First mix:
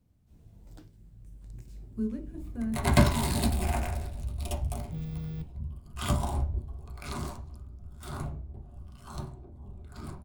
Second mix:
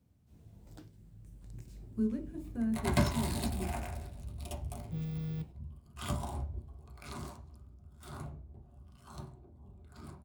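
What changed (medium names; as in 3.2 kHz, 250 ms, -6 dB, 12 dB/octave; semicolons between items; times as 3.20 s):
second sound -7.0 dB; master: add high-pass 60 Hz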